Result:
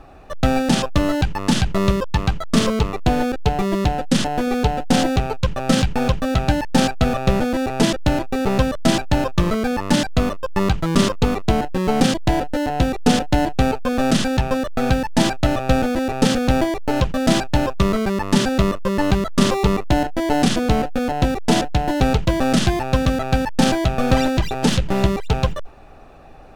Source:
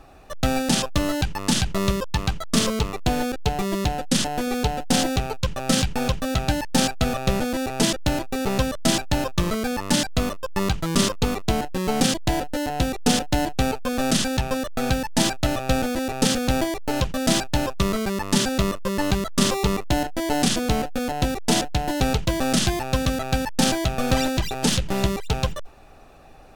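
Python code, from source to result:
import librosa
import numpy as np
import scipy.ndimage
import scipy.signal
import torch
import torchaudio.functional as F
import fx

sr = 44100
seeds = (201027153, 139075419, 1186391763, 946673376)

y = fx.high_shelf(x, sr, hz=3900.0, db=-11.0)
y = y * librosa.db_to_amplitude(5.0)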